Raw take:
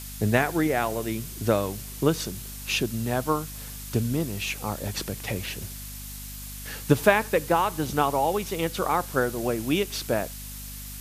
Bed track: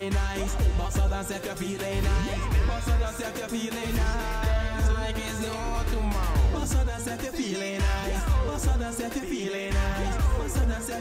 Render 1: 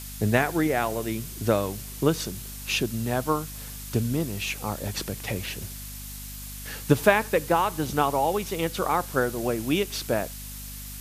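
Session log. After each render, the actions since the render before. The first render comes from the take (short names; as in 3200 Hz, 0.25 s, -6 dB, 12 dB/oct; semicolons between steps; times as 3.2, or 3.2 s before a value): nothing audible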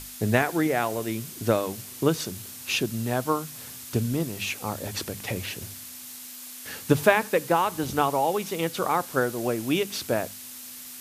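notches 50/100/150/200 Hz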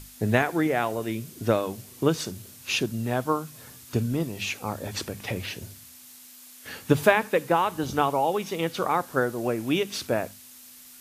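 noise print and reduce 7 dB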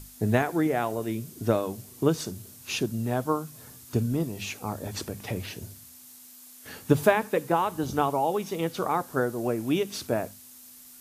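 bell 2500 Hz -6 dB 2.1 oct; notch 530 Hz, Q 16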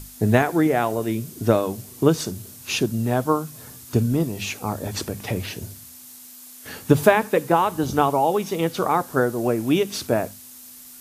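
gain +6 dB; limiter -2 dBFS, peak gain reduction 1.5 dB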